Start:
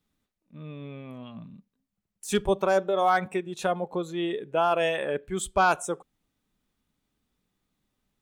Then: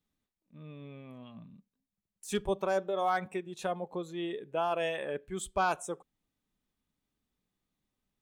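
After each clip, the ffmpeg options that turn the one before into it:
-af "bandreject=f=1.4k:w=17,volume=-7dB"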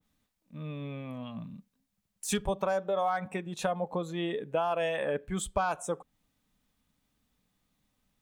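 -af "equalizer=f=370:w=6.8:g=-13,acompressor=threshold=-35dB:ratio=6,adynamicequalizer=threshold=0.00141:dfrequency=1900:dqfactor=0.7:tfrequency=1900:tqfactor=0.7:attack=5:release=100:ratio=0.375:range=3:mode=cutabove:tftype=highshelf,volume=9dB"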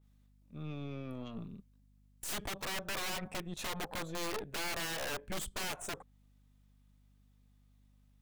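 -af "aeval=exprs='val(0)+0.000891*(sin(2*PI*50*n/s)+sin(2*PI*2*50*n/s)/2+sin(2*PI*3*50*n/s)/3+sin(2*PI*4*50*n/s)/4+sin(2*PI*5*50*n/s)/5)':c=same,aeval=exprs='(mod(26.6*val(0)+1,2)-1)/26.6':c=same,aeval=exprs='(tanh(63.1*val(0)+0.75)-tanh(0.75))/63.1':c=same,volume=1dB"

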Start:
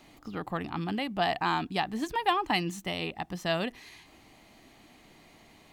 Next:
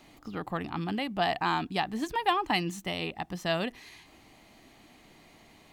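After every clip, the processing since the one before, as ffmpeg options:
-af anull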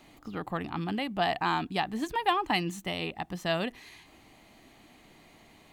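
-af "equalizer=f=5.3k:t=o:w=0.39:g=-3.5"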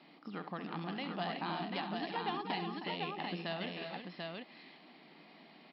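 -filter_complex "[0:a]acrossover=split=730|3600[a][b][c];[a]acompressor=threshold=-38dB:ratio=4[d];[b]acompressor=threshold=-40dB:ratio=4[e];[c]acompressor=threshold=-45dB:ratio=4[f];[d][e][f]amix=inputs=3:normalize=0,aecho=1:1:68|207|314|364|741:0.266|0.112|0.376|0.376|0.668,afftfilt=real='re*between(b*sr/4096,140,5500)':imag='im*between(b*sr/4096,140,5500)':win_size=4096:overlap=0.75,volume=-3.5dB"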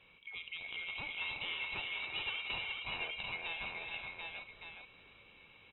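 -filter_complex "[0:a]afftfilt=real='real(if(lt(b,920),b+92*(1-2*mod(floor(b/92),2)),b),0)':imag='imag(if(lt(b,920),b+92*(1-2*mod(floor(b/92),2)),b),0)':win_size=2048:overlap=0.75,asplit=2[a][b];[b]aecho=0:1:422:0.562[c];[a][c]amix=inputs=2:normalize=0,aresample=11025,aresample=44100,volume=-3dB"

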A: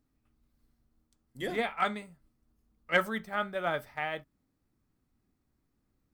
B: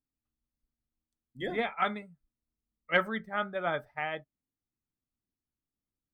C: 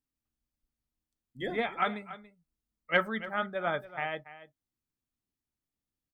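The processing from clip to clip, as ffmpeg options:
-af "afftdn=nr=18:nf=-45"
-af "aecho=1:1:284:0.168"

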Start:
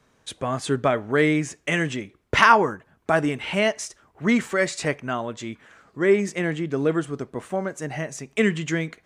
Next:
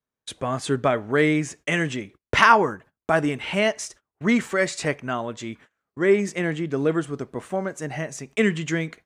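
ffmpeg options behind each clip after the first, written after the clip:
-af "agate=range=-28dB:threshold=-45dB:ratio=16:detection=peak"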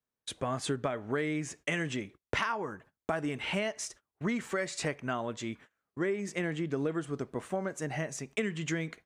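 -af "acompressor=threshold=-24dB:ratio=12,volume=-4dB"

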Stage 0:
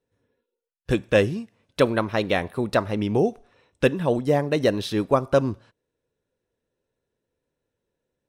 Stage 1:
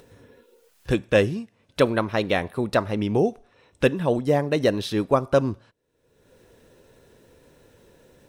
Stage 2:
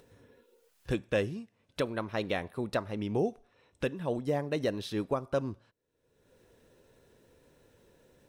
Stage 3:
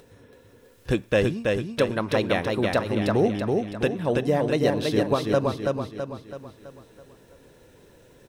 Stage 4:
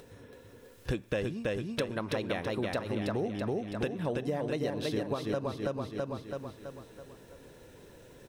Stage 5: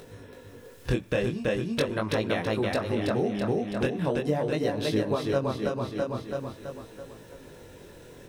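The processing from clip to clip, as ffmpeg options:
-af "acompressor=mode=upward:threshold=-33dB:ratio=2.5"
-af "alimiter=limit=-11dB:level=0:latency=1:release=476,volume=-8dB"
-af "aecho=1:1:329|658|987|1316|1645|1974:0.708|0.34|0.163|0.0783|0.0376|0.018,volume=7.5dB"
-af "acompressor=threshold=-30dB:ratio=5"
-af "flanger=delay=18:depth=7.1:speed=0.42,volume=8.5dB"

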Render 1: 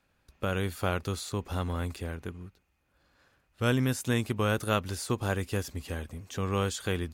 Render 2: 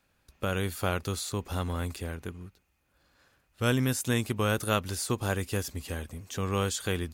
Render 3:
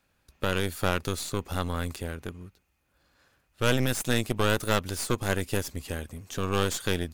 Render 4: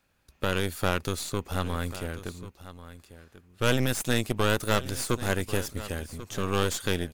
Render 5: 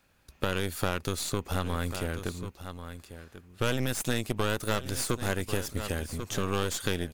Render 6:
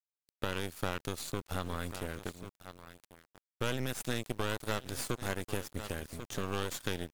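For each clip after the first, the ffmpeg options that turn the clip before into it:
-af "highshelf=f=4.9k:g=6"
-af "aeval=exprs='0.299*(cos(1*acos(clip(val(0)/0.299,-1,1)))-cos(1*PI/2))+0.0668*(cos(6*acos(clip(val(0)/0.299,-1,1)))-cos(6*PI/2))':c=same"
-af "aecho=1:1:1090:0.178"
-af "acompressor=threshold=-31dB:ratio=2.5,volume=4dB"
-af "aeval=exprs='sgn(val(0))*max(abs(val(0))-0.01,0)':c=same,acrusher=bits=8:mix=0:aa=0.000001,volume=-4.5dB" -ar 48000 -c:a aac -b:a 96k

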